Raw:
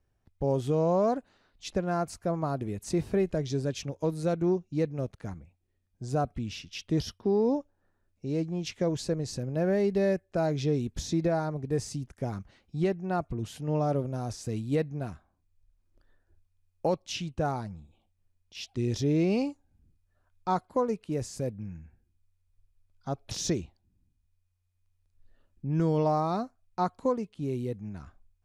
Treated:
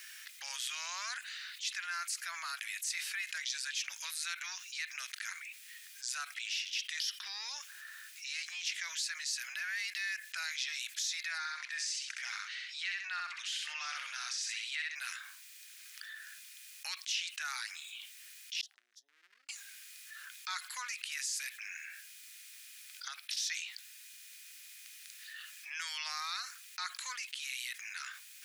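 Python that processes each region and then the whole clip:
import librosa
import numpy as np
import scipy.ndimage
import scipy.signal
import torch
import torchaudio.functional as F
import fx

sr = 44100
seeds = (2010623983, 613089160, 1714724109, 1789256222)

y = fx.chain(x, sr, fx.bandpass_edges(low_hz=410.0, high_hz=5600.0),
    fx.echo_feedback(ms=65, feedback_pct=15, wet_db=-4.5), at=(11.38, 14.96))
y = fx.chain(y, sr, fx.cheby2_lowpass(hz=890.0, order=4, stop_db=70),
    fx.dynamic_eq(hz=130.0, q=6.2, threshold_db=-45.0, ratio=4.0, max_db=-5),
    fx.pre_swell(db_per_s=25.0), at=(18.61, 19.49))
y = fx.chain(y, sr, fx.peak_eq(hz=6700.0, db=-7.5, octaves=0.38),
    fx.level_steps(step_db=13), at=(23.08, 23.5))
y = scipy.signal.sosfilt(scipy.signal.butter(6, 1700.0, 'highpass', fs=sr, output='sos'), y)
y = fx.env_flatten(y, sr, amount_pct=70)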